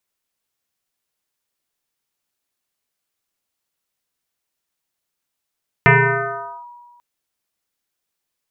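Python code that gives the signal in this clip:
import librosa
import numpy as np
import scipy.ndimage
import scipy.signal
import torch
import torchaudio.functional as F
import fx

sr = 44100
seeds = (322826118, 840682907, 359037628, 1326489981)

y = fx.fm2(sr, length_s=1.14, level_db=-6.0, carrier_hz=963.0, ratio=0.29, index=4.6, index_s=0.8, decay_s=1.61, shape='linear')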